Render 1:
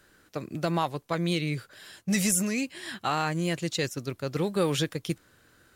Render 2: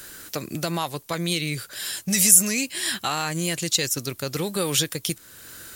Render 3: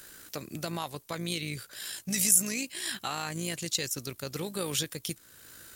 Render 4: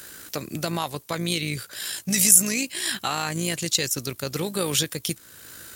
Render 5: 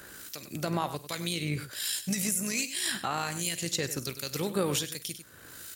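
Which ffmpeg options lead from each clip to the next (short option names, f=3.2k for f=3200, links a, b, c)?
-filter_complex "[0:a]asplit=2[a][b];[b]alimiter=limit=-23dB:level=0:latency=1:release=126,volume=2.5dB[c];[a][c]amix=inputs=2:normalize=0,acompressor=threshold=-45dB:ratio=1.5,crystalizer=i=4:c=0,volume=4dB"
-af "tremolo=f=56:d=0.4,volume=-6.5dB"
-af "highpass=42,volume=7.5dB"
-filter_complex "[0:a]acrossover=split=2100[a][b];[a]aeval=exprs='val(0)*(1-0.7/2+0.7/2*cos(2*PI*1.3*n/s))':c=same[c];[b]aeval=exprs='val(0)*(1-0.7/2-0.7/2*cos(2*PI*1.3*n/s))':c=same[d];[c][d]amix=inputs=2:normalize=0,aecho=1:1:47|98:0.141|0.224,alimiter=limit=-17.5dB:level=0:latency=1:release=333"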